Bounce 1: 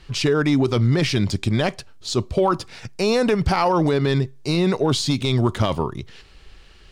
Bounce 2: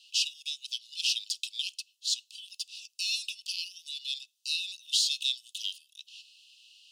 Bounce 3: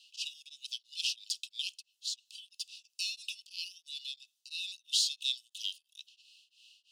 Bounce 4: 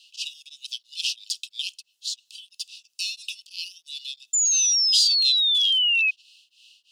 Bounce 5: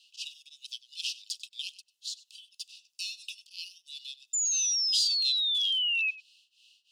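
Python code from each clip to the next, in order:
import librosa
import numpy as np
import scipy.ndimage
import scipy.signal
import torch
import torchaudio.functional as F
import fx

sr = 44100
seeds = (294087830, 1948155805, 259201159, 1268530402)

y1 = scipy.signal.sosfilt(scipy.signal.cheby1(10, 1.0, 2600.0, 'highpass', fs=sr, output='sos'), x)
y2 = y1 * np.abs(np.cos(np.pi * 3.0 * np.arange(len(y1)) / sr))
y2 = F.gain(torch.from_numpy(y2), -2.0).numpy()
y3 = fx.spec_paint(y2, sr, seeds[0], shape='fall', start_s=4.33, length_s=1.78, low_hz=2500.0, high_hz=7200.0, level_db=-27.0)
y3 = F.gain(torch.from_numpy(y3), 6.5).numpy()
y4 = y3 + 10.0 ** (-19.0 / 20.0) * np.pad(y3, (int(96 * sr / 1000.0), 0))[:len(y3)]
y4 = F.gain(torch.from_numpy(y4), -7.5).numpy()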